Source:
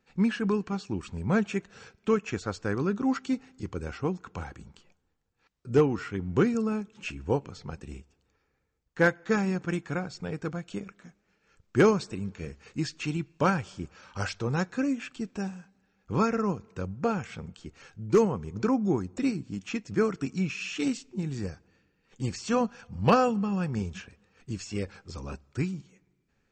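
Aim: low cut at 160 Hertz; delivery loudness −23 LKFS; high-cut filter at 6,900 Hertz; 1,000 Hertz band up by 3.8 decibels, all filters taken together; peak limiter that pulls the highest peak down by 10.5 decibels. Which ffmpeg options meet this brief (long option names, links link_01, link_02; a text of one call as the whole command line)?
ffmpeg -i in.wav -af "highpass=160,lowpass=6900,equalizer=frequency=1000:width_type=o:gain=5,volume=9dB,alimiter=limit=-8.5dB:level=0:latency=1" out.wav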